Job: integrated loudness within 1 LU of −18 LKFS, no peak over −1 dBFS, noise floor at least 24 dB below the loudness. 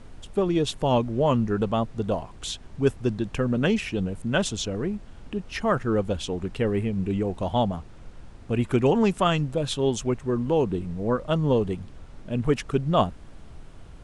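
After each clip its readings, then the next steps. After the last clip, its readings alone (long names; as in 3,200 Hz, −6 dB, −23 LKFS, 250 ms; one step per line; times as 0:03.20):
background noise floor −45 dBFS; target noise floor −50 dBFS; integrated loudness −26.0 LKFS; sample peak −8.0 dBFS; target loudness −18.0 LKFS
→ noise reduction from a noise print 6 dB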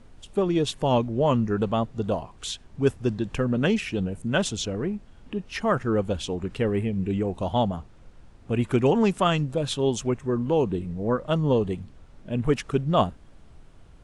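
background noise floor −50 dBFS; integrated loudness −26.0 LKFS; sample peak −8.0 dBFS; target loudness −18.0 LKFS
→ level +8 dB
brickwall limiter −1 dBFS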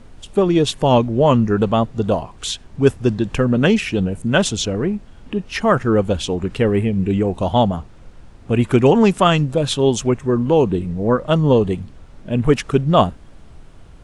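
integrated loudness −18.0 LKFS; sample peak −1.0 dBFS; background noise floor −42 dBFS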